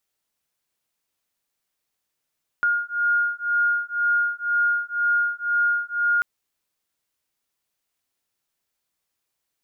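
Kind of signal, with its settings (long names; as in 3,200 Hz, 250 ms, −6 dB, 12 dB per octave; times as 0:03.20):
two tones that beat 1,420 Hz, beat 2 Hz, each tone −22.5 dBFS 3.59 s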